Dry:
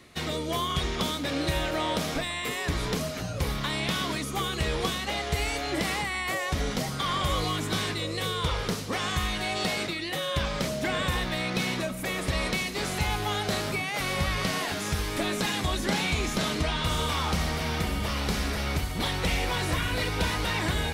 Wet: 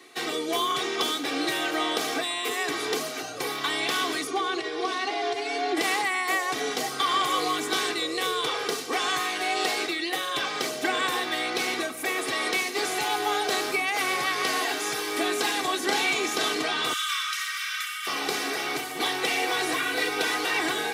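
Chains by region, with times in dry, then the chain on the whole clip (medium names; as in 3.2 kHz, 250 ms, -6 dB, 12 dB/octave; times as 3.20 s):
4.27–5.77 s: distance through air 87 m + compression, threshold -30 dBFS + comb 2.8 ms, depth 94%
16.93–18.07 s: steep high-pass 1.2 kHz 72 dB/octave + band-stop 4.5 kHz
whole clip: Bessel high-pass 290 Hz, order 6; comb 2.6 ms, depth 84%; trim +1.5 dB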